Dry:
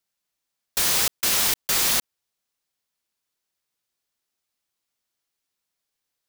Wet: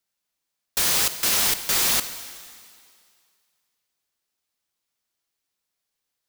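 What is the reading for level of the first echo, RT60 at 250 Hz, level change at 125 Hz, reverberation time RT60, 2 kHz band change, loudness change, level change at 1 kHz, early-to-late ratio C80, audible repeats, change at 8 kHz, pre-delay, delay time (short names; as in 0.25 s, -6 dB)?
none, 2.0 s, +0.5 dB, 2.2 s, +0.5 dB, +0.5 dB, +0.5 dB, 12.5 dB, none, +0.5 dB, 36 ms, none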